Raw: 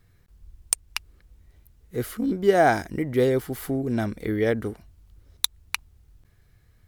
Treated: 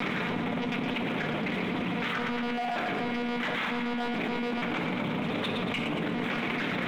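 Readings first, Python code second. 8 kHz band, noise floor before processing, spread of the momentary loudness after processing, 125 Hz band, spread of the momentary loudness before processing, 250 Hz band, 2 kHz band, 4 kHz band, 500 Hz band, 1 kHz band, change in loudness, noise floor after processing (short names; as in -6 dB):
under -20 dB, -60 dBFS, 1 LU, -4.0 dB, 14 LU, -1.0 dB, +2.5 dB, -0.5 dB, -8.5 dB, -2.5 dB, -5.0 dB, -32 dBFS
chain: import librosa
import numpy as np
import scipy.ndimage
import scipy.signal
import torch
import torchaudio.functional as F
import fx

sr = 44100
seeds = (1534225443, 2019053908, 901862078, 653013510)

y = np.sign(x) * np.sqrt(np.mean(np.square(x)))
y = fx.peak_eq(y, sr, hz=820.0, db=6.5, octaves=2.0)
y = 10.0 ** (-28.5 / 20.0) * np.tanh(y / 10.0 ** (-28.5 / 20.0))
y = fx.lpc_monotone(y, sr, seeds[0], pitch_hz=240.0, order=8)
y = fx.chopper(y, sr, hz=7.0, depth_pct=60, duty_pct=55)
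y = scipy.signal.sosfilt(scipy.signal.cheby1(3, 1.0, 190.0, 'highpass', fs=sr, output='sos'), y)
y = fx.leveller(y, sr, passes=2)
y = fx.peak_eq(y, sr, hz=2300.0, db=6.0, octaves=0.37)
y = fx.echo_feedback(y, sr, ms=116, feedback_pct=53, wet_db=-10.0)
y = fx.room_shoebox(y, sr, seeds[1], volume_m3=86.0, walls='mixed', distance_m=0.37)
y = fx.env_flatten(y, sr, amount_pct=100)
y = y * librosa.db_to_amplitude(-6.0)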